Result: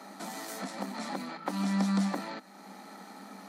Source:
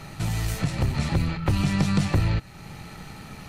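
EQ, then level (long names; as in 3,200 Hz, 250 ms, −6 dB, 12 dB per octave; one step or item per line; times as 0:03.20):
Chebyshev high-pass with heavy ripple 190 Hz, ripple 6 dB
parametric band 2,700 Hz −11 dB 0.4 octaves
dynamic equaliser 360 Hz, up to −5 dB, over −43 dBFS, Q 1.1
0.0 dB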